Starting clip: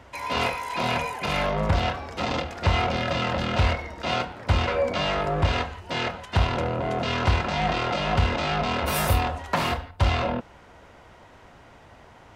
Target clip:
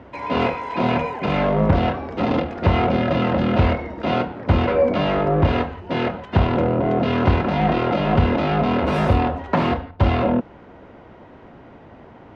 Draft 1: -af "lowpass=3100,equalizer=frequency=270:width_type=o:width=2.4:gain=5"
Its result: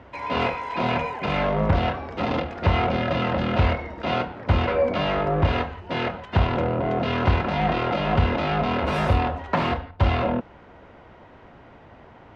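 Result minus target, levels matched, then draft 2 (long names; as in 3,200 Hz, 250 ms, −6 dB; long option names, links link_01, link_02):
250 Hz band −3.0 dB
-af "lowpass=3100,equalizer=frequency=270:width_type=o:width=2.4:gain=12"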